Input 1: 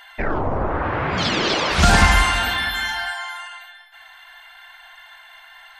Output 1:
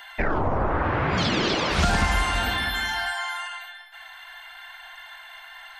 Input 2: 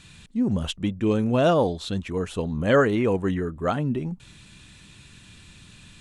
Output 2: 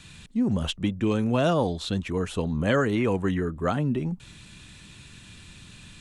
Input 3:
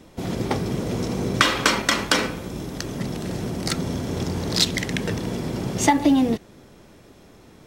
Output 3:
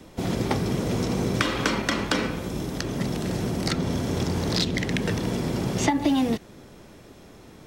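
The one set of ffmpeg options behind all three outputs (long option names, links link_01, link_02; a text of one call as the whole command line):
ffmpeg -i in.wav -filter_complex "[0:a]acrossover=split=330|670|5200[link_01][link_02][link_03][link_04];[link_01]acompressor=threshold=-24dB:ratio=4[link_05];[link_02]acompressor=threshold=-34dB:ratio=4[link_06];[link_03]acompressor=threshold=-27dB:ratio=4[link_07];[link_04]acompressor=threshold=-42dB:ratio=4[link_08];[link_05][link_06][link_07][link_08]amix=inputs=4:normalize=0,volume=1.5dB" out.wav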